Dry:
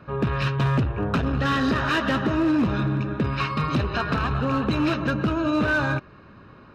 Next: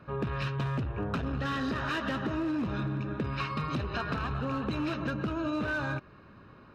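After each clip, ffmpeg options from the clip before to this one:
ffmpeg -i in.wav -af "acompressor=threshold=-23dB:ratio=6,volume=-5.5dB" out.wav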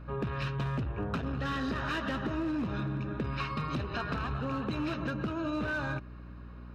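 ffmpeg -i in.wav -af "aeval=exprs='val(0)+0.00708*(sin(2*PI*60*n/s)+sin(2*PI*2*60*n/s)/2+sin(2*PI*3*60*n/s)/3+sin(2*PI*4*60*n/s)/4+sin(2*PI*5*60*n/s)/5)':channel_layout=same,volume=-1.5dB" out.wav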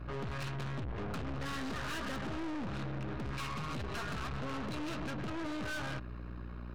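ffmpeg -i in.wav -af "aeval=exprs='(tanh(141*val(0)+0.6)-tanh(0.6))/141':channel_layout=same,volume=5.5dB" out.wav

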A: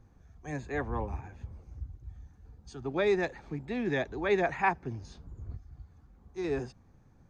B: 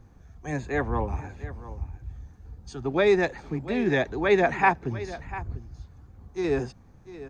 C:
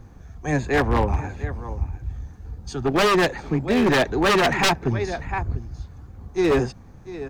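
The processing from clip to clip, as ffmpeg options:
ffmpeg -i in.wav -af "aecho=1:1:696:0.168,volume=6.5dB" out.wav
ffmpeg -i in.wav -af "aeval=exprs='0.0944*(abs(mod(val(0)/0.0944+3,4)-2)-1)':channel_layout=same,aeval=exprs='0.0944*(cos(1*acos(clip(val(0)/0.0944,-1,1)))-cos(1*PI/2))+0.00266*(cos(6*acos(clip(val(0)/0.0944,-1,1)))-cos(6*PI/2))':channel_layout=same,volume=8dB" out.wav

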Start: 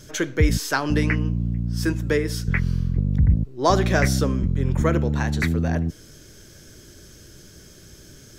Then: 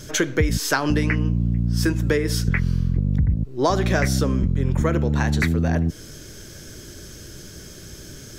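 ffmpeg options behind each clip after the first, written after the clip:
ffmpeg -i in.wav -af "acompressor=threshold=-23dB:ratio=5,volume=6.5dB" out.wav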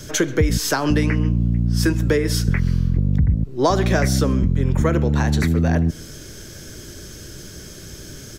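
ffmpeg -i in.wav -filter_complex "[0:a]asplit=2[link_01][link_02];[link_02]adelay=134.1,volume=-25dB,highshelf=frequency=4000:gain=-3.02[link_03];[link_01][link_03]amix=inputs=2:normalize=0,acrossover=split=280|1100|4300[link_04][link_05][link_06][link_07];[link_06]alimiter=limit=-22dB:level=0:latency=1:release=116[link_08];[link_04][link_05][link_08][link_07]amix=inputs=4:normalize=0,volume=2.5dB" out.wav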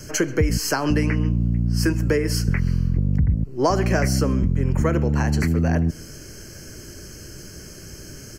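ffmpeg -i in.wav -af "asuperstop=centerf=3600:order=8:qfactor=3.7,volume=-2dB" out.wav

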